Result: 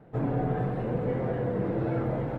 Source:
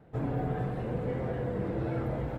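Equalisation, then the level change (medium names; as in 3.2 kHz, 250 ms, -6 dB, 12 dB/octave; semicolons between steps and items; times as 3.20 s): peaking EQ 65 Hz -13 dB 0.64 oct; treble shelf 3.2 kHz -9.5 dB; +4.5 dB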